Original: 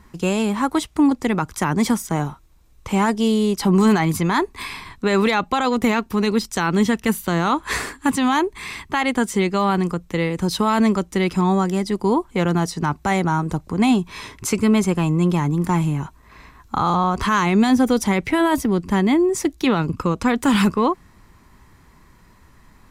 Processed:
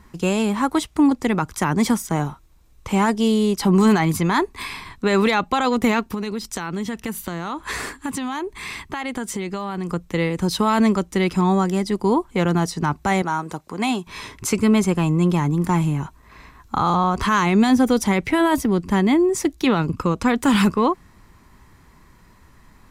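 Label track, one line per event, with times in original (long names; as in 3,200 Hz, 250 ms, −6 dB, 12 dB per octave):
6.140000	9.890000	downward compressor, threshold −23 dBFS
13.220000	14.070000	high-pass filter 510 Hz 6 dB per octave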